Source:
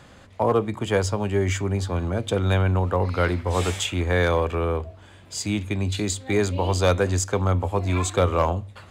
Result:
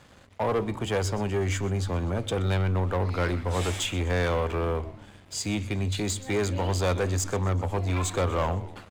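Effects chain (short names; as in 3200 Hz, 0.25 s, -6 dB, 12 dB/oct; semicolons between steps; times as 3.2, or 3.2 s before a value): frequency-shifting echo 0.125 s, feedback 52%, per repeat -95 Hz, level -18.5 dB; sample leveller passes 2; gain -9 dB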